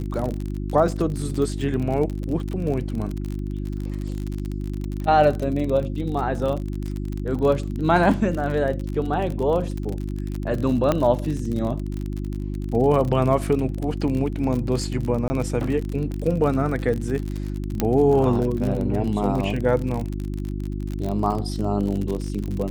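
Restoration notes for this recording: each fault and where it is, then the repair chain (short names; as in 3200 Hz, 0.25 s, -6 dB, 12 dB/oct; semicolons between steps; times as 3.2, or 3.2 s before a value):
crackle 41/s -26 dBFS
hum 50 Hz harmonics 7 -28 dBFS
10.92 pop -8 dBFS
15.28–15.3 gap 20 ms
17.8 pop -6 dBFS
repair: de-click; de-hum 50 Hz, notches 7; interpolate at 15.28, 20 ms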